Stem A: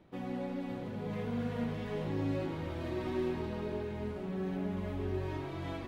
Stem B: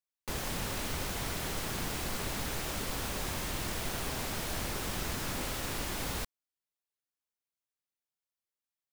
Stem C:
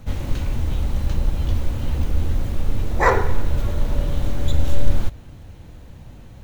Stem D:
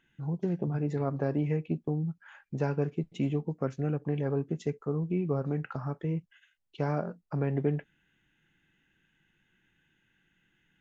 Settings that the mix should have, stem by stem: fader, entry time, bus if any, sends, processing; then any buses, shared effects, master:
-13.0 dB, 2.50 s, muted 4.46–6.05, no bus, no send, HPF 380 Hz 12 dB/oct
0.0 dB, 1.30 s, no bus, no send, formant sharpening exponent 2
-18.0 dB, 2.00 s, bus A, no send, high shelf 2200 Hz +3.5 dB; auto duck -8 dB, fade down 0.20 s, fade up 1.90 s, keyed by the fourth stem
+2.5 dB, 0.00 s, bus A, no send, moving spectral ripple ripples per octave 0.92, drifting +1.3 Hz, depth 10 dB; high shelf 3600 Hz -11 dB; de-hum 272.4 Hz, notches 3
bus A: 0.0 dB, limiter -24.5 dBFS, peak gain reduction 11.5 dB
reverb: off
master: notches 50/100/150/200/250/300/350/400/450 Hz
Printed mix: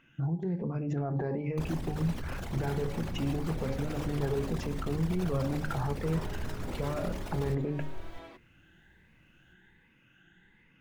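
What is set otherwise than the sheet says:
stem A -13.0 dB -> -5.5 dB; stem C: entry 2.00 s -> 3.10 s; stem D +2.5 dB -> +9.5 dB

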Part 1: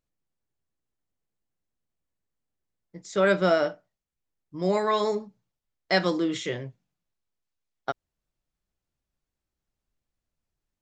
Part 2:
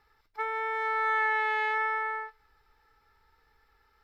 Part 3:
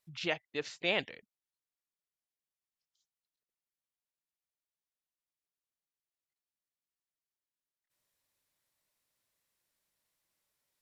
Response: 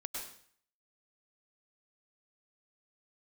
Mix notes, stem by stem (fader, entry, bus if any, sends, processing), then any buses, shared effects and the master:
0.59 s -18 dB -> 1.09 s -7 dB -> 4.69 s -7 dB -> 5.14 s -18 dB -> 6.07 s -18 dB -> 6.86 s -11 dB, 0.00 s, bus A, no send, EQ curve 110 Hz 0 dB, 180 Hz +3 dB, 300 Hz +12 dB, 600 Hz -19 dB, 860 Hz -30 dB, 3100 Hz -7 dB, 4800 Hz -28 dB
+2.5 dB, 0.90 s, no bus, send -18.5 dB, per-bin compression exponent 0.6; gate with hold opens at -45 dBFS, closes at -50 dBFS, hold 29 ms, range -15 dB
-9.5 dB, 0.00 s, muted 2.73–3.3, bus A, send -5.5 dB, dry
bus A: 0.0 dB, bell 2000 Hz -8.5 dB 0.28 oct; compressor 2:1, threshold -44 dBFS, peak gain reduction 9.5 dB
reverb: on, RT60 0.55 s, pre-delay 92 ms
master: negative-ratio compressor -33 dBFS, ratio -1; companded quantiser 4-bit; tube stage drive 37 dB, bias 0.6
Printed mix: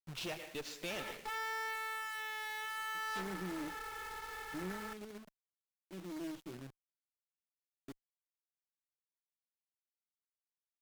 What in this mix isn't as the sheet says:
stem 1 -18.0 dB -> -26.0 dB; stem 3 -9.5 dB -> -2.5 dB; reverb return -9.5 dB

